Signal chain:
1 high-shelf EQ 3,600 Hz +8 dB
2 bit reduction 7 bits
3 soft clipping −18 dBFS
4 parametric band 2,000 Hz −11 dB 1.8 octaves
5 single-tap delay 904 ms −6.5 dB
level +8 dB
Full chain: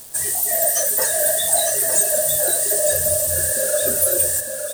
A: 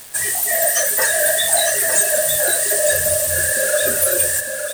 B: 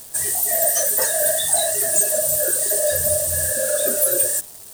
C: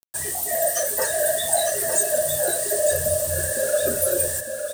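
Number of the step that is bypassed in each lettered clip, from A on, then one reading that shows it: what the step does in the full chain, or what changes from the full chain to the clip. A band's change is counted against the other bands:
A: 4, 2 kHz band +8.5 dB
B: 5, change in crest factor −2.0 dB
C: 1, 8 kHz band −6.0 dB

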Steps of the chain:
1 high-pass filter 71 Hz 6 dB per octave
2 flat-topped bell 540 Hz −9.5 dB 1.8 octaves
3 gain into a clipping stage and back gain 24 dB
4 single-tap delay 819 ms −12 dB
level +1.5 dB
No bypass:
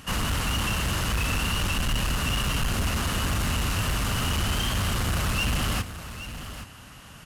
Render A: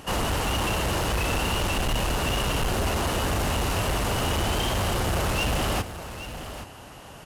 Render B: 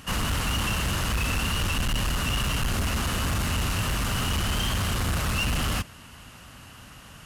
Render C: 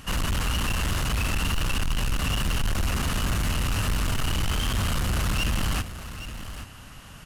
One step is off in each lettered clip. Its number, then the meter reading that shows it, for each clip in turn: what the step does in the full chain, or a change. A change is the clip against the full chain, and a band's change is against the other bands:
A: 2, 500 Hz band +8.5 dB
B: 4, change in momentary loudness spread +8 LU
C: 1, 125 Hz band +1.5 dB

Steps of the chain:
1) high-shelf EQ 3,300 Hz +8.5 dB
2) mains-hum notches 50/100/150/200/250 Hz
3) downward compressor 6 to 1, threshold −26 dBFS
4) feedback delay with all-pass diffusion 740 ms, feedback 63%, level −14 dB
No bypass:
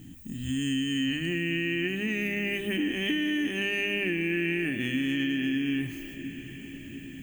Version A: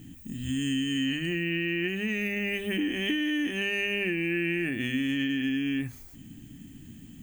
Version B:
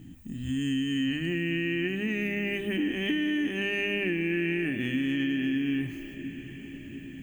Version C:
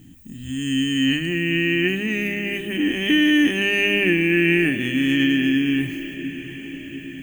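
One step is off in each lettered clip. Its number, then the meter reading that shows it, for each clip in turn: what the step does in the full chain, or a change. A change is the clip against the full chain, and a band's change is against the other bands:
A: 4, echo-to-direct ratio −12.0 dB to none audible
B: 1, 4 kHz band −3.5 dB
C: 3, change in momentary loudness spread +3 LU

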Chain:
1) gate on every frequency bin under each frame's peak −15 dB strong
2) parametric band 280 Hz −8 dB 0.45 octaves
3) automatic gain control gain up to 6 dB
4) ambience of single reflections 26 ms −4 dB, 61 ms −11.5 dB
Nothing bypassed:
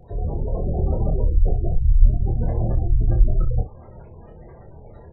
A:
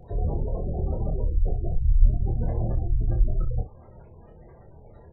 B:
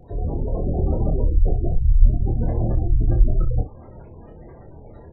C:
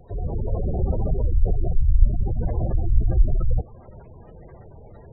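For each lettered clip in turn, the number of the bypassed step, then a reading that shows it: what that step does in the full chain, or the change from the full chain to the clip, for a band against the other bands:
3, change in integrated loudness −4.5 LU
2, 250 Hz band +2.5 dB
4, change in integrated loudness −2.0 LU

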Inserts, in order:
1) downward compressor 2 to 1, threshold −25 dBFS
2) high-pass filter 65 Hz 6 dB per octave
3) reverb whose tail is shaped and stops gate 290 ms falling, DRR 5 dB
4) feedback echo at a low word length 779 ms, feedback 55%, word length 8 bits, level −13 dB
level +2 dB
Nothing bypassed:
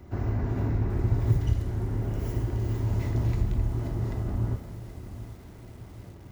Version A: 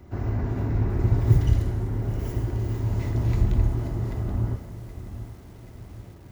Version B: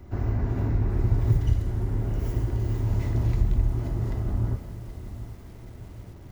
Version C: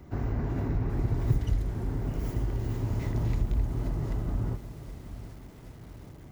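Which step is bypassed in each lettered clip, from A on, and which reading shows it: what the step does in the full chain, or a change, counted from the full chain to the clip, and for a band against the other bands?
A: 1, change in momentary loudness spread +3 LU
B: 2, 125 Hz band +1.5 dB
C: 3, 125 Hz band −2.0 dB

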